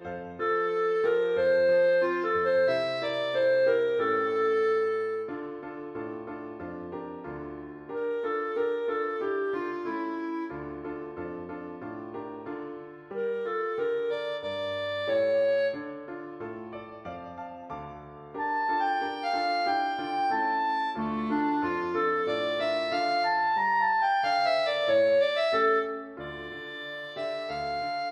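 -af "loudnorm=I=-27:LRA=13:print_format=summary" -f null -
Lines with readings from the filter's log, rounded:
Input Integrated:    -28.2 LUFS
Input True Peak:     -14.3 dBTP
Input LRA:             8.7 LU
Input Threshold:     -38.8 LUFS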